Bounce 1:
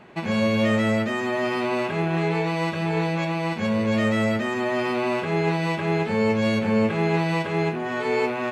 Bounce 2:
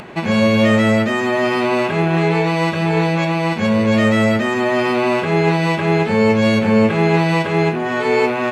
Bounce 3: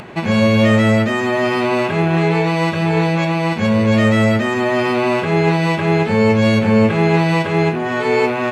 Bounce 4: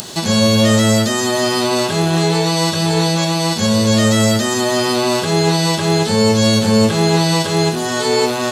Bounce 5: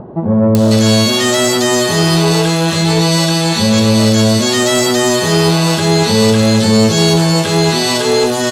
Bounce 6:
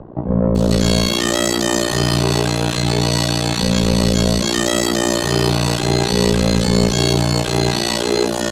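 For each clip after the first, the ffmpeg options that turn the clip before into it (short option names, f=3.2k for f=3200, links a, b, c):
-af "acompressor=mode=upward:threshold=-37dB:ratio=2.5,volume=7.5dB"
-af "equalizer=f=100:w=1.7:g=5"
-filter_complex "[0:a]acrossover=split=2500[a][b];[b]acompressor=threshold=-42dB:ratio=4:attack=1:release=60[c];[a][c]amix=inputs=2:normalize=0,aexciter=amount=10.7:drive=9.6:freq=3.7k"
-filter_complex "[0:a]acrossover=split=910[a][b];[b]adelay=550[c];[a][c]amix=inputs=2:normalize=0,asoftclip=type=tanh:threshold=-9.5dB,volume=5.5dB"
-af "tremolo=f=59:d=0.974,afreqshift=-28,volume=-1dB"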